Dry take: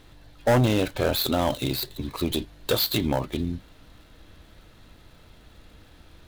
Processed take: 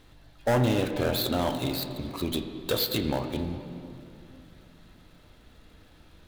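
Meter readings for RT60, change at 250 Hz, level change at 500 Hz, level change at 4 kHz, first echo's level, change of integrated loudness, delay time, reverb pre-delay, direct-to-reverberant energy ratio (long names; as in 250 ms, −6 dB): 2.6 s, −2.5 dB, −3.0 dB, −3.5 dB, no echo audible, −3.0 dB, no echo audible, 16 ms, 6.5 dB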